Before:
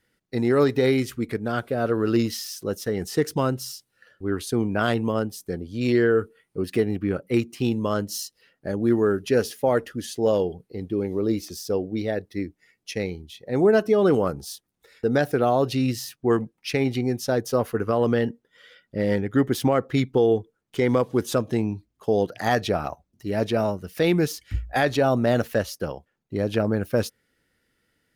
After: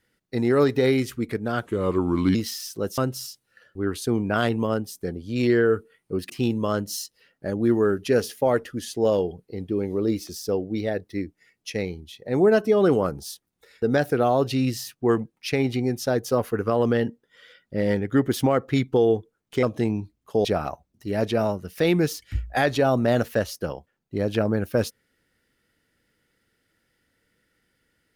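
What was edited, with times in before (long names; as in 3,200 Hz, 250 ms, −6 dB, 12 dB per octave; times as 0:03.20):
0:01.66–0:02.21: play speed 80%
0:02.84–0:03.43: remove
0:06.75–0:07.51: remove
0:20.84–0:21.36: remove
0:22.18–0:22.64: remove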